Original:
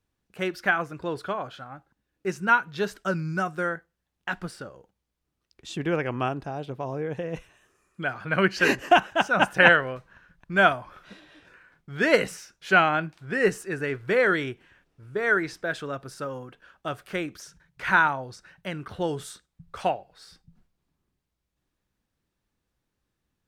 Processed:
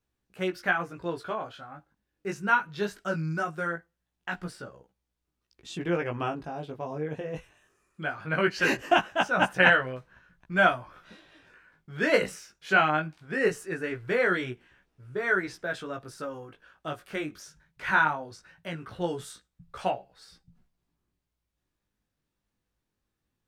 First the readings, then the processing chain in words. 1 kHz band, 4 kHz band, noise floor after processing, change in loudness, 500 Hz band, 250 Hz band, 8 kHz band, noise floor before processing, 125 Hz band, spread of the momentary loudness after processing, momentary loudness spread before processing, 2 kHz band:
-3.0 dB, -3.0 dB, -83 dBFS, -3.0 dB, -3.0 dB, -3.0 dB, -3.0 dB, -82 dBFS, -2.5 dB, 18 LU, 17 LU, -3.0 dB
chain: chorus 0.2 Hz, delay 16 ms, depth 3.9 ms

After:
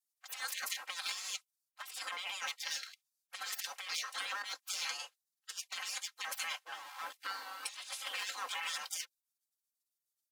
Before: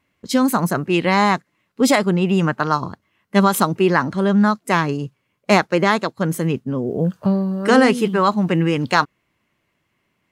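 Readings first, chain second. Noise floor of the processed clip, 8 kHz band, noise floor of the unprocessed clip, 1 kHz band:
under -85 dBFS, -9.0 dB, -71 dBFS, -25.5 dB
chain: in parallel at -3.5 dB: one-sided clip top -13.5 dBFS, bottom -6 dBFS; on the sum: waveshaping leveller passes 1; spectral gate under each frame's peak -30 dB weak; compressor with a negative ratio -34 dBFS, ratio -0.5; high-pass 840 Hz 12 dB/octave; comb 3.8 ms, depth 76%; trim -7 dB

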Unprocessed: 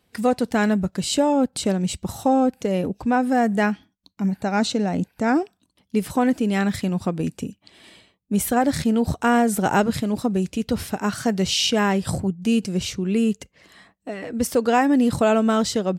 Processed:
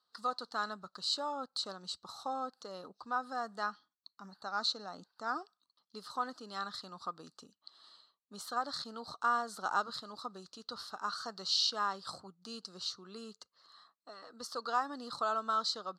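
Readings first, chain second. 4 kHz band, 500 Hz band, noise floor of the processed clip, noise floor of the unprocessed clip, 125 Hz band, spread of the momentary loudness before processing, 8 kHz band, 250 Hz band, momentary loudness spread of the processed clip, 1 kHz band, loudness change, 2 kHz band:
-7.5 dB, -21.5 dB, under -85 dBFS, -69 dBFS, -32.5 dB, 8 LU, -17.5 dB, -30.0 dB, 20 LU, -11.0 dB, -15.5 dB, -14.0 dB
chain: two resonant band-passes 2.3 kHz, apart 1.8 oct

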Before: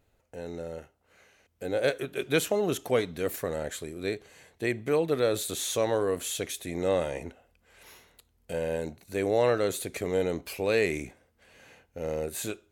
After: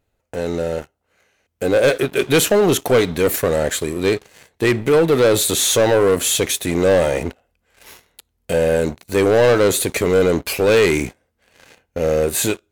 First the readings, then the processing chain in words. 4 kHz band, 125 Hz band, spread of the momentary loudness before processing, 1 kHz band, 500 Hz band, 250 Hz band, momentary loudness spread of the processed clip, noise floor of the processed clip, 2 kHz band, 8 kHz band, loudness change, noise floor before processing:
+14.0 dB, +13.5 dB, 13 LU, +11.5 dB, +12.5 dB, +13.0 dB, 11 LU, -72 dBFS, +12.5 dB, +15.0 dB, +12.5 dB, -70 dBFS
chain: waveshaping leveller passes 3; trim +4.5 dB

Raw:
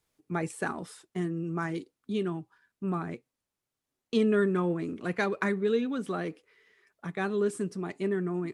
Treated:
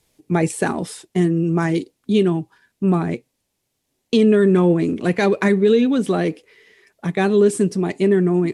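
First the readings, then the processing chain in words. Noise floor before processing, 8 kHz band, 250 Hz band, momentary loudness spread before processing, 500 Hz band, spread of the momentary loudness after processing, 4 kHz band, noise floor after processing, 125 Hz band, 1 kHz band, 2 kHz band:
under -85 dBFS, no reading, +13.5 dB, 12 LU, +12.5 dB, 10 LU, +12.5 dB, -75 dBFS, +14.0 dB, +9.5 dB, +8.5 dB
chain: peaking EQ 1.3 kHz -9 dB 0.79 oct; resampled via 32 kHz; loudness maximiser +20 dB; trim -5.5 dB

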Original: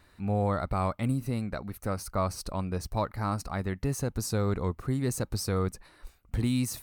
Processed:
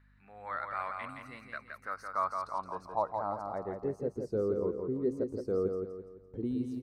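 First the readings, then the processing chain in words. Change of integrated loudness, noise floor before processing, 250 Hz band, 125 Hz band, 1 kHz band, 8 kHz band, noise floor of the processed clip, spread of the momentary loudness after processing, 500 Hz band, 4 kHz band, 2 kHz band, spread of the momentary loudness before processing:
-4.5 dB, -61 dBFS, -6.0 dB, -16.0 dB, -1.0 dB, under -25 dB, -60 dBFS, 12 LU, 0.0 dB, under -15 dB, -2.0 dB, 6 LU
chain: band-pass sweep 1.7 kHz -> 410 Hz, 1.70–4.10 s; spectral noise reduction 9 dB; hum 50 Hz, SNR 27 dB; on a send: feedback delay 169 ms, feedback 40%, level -5 dB; on the sum: trim +3 dB

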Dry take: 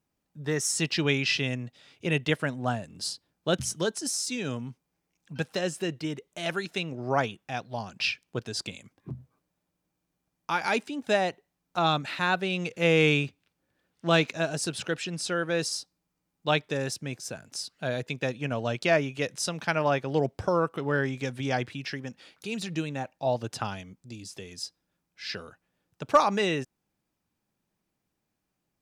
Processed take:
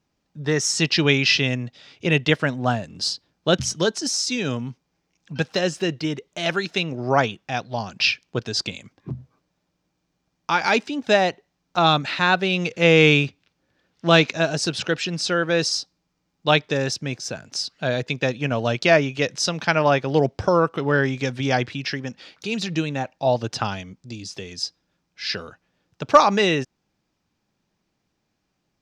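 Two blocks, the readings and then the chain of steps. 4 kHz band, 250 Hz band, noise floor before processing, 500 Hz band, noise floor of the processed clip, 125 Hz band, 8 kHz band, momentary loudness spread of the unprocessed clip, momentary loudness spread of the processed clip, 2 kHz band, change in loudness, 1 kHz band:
+9.0 dB, +7.0 dB, -82 dBFS, +7.0 dB, -75 dBFS, +7.0 dB, +5.0 dB, 14 LU, 14 LU, +7.5 dB, +7.5 dB, +7.0 dB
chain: resonant high shelf 7.7 kHz -11.5 dB, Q 1.5; trim +7 dB

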